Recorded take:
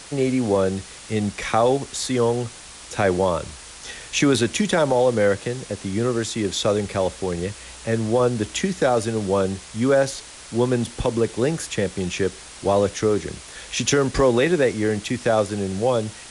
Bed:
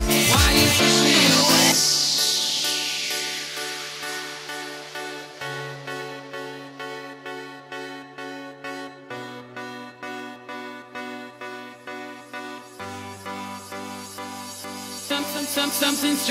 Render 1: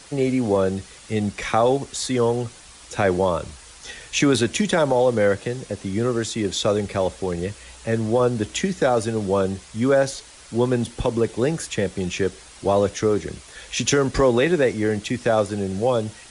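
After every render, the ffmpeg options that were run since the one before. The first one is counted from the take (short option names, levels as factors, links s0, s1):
-af "afftdn=nr=6:nf=-41"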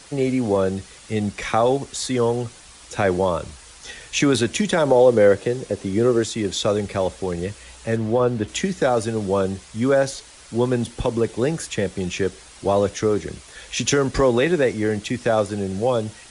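-filter_complex "[0:a]asettb=1/sr,asplit=3[s0][s1][s2];[s0]atrim=end=4.854[s3];[s1]atrim=start=4.85:end=6.25,asetpts=PTS-STARTPTS,afade=t=in:d=0.004:c=qsin,afade=t=out:st=1.396:d=0.004:c=qsin,equalizer=f=410:w=1.3:g=6.5[s4];[s2]atrim=start=6.246[s5];[s3][s4]acrossfade=d=0.004:c1=hsin:c2=qsin[s6];[s6][s5]acrossfade=d=0.004:c1=qsin:c2=hsin,asettb=1/sr,asplit=3[s7][s8][s9];[s7]atrim=end=7.964[s10];[s8]atrim=start=7.96:end=8.48,asetpts=PTS-STARTPTS,afade=t=in:d=0.004:c=qsin,afade=t=out:st=0.516:d=0.004:c=qsin,acrossover=split=3900[s11][s12];[s12]acompressor=threshold=0.002:ratio=4:attack=1:release=60[s13];[s11][s13]amix=inputs=2:normalize=0[s14];[s9]atrim=start=8.476[s15];[s10][s14]acrossfade=d=0.004:c1=hsin:c2=qsin[s16];[s16][s15]acrossfade=d=0.004:c1=qsin:c2=hsin"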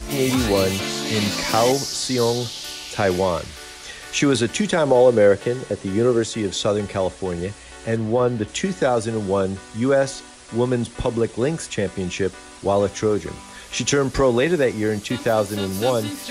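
-filter_complex "[1:a]volume=0.355[s0];[0:a][s0]amix=inputs=2:normalize=0"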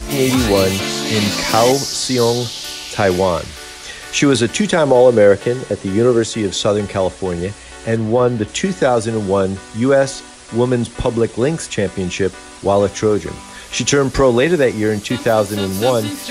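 -af "volume=1.78,alimiter=limit=0.891:level=0:latency=1"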